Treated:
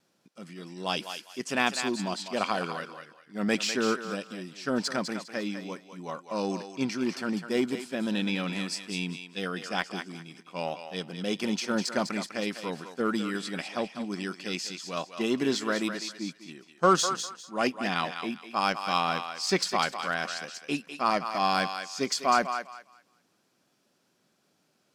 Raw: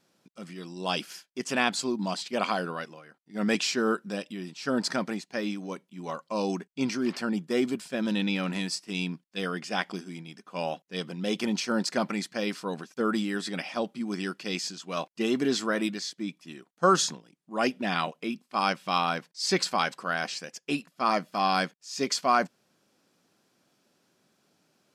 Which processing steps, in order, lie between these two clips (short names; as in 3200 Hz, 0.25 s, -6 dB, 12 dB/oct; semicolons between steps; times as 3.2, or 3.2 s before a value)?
added harmonics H 7 -30 dB, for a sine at -10 dBFS; vibrato 1.4 Hz 15 cents; thinning echo 0.201 s, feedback 26%, high-pass 690 Hz, level -7 dB